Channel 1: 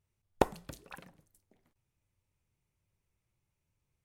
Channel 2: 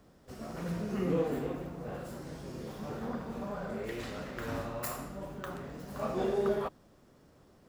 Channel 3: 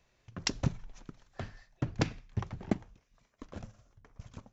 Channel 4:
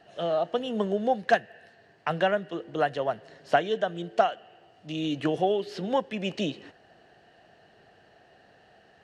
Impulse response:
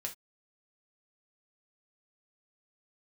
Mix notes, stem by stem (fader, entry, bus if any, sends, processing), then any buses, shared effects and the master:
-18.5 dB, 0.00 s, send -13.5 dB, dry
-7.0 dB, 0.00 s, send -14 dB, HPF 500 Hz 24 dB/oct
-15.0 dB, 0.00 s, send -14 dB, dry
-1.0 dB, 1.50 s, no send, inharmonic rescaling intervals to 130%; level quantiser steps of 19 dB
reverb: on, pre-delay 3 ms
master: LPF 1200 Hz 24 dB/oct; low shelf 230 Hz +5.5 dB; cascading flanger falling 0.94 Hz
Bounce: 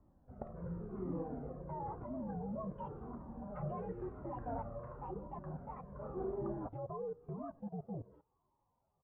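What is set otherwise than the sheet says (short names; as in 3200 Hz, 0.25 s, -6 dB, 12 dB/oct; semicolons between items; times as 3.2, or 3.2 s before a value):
stem 2: missing HPF 500 Hz 24 dB/oct; stem 3 -15.0 dB -> -22.0 dB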